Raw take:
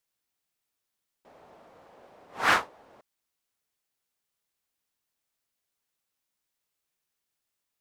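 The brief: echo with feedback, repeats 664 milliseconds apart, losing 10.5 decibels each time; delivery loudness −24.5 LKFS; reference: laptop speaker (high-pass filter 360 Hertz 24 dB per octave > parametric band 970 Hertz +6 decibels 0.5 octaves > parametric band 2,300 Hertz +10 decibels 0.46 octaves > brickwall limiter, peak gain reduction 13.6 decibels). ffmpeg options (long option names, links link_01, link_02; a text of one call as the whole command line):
ffmpeg -i in.wav -af "highpass=frequency=360:width=0.5412,highpass=frequency=360:width=1.3066,equalizer=frequency=970:width_type=o:width=0.5:gain=6,equalizer=frequency=2300:width_type=o:width=0.46:gain=10,aecho=1:1:664|1328|1992:0.299|0.0896|0.0269,volume=10dB,alimiter=limit=-9.5dB:level=0:latency=1" out.wav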